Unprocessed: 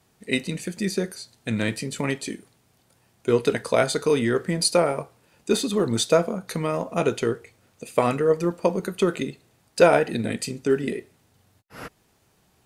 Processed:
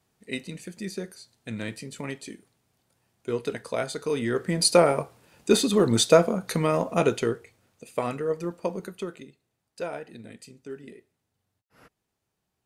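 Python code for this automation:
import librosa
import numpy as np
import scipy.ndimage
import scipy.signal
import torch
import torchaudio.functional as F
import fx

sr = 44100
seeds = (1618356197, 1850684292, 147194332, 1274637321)

y = fx.gain(x, sr, db=fx.line((3.98, -8.5), (4.77, 2.0), (6.87, 2.0), (7.85, -7.5), (8.83, -7.5), (9.27, -17.5)))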